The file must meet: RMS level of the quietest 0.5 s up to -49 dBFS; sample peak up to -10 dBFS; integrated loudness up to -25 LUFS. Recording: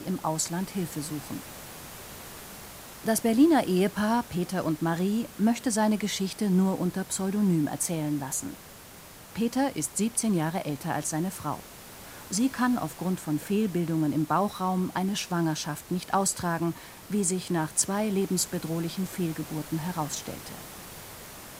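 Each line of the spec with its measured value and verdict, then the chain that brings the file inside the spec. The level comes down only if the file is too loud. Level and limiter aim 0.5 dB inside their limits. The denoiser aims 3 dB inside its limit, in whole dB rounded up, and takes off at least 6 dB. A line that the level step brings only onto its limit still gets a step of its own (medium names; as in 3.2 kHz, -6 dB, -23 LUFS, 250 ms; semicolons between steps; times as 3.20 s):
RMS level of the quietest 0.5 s -48 dBFS: fail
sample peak -10.5 dBFS: pass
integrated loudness -28.0 LUFS: pass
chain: noise reduction 6 dB, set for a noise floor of -48 dBFS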